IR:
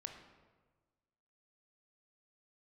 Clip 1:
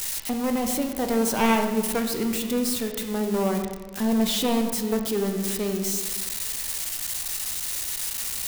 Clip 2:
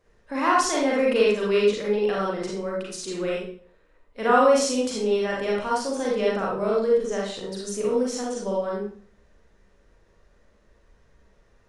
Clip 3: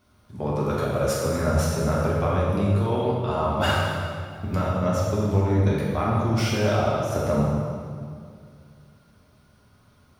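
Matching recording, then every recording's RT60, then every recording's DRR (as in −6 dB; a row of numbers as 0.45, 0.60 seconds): 1; 1.4, 0.50, 2.2 seconds; 4.0, −4.5, −6.5 decibels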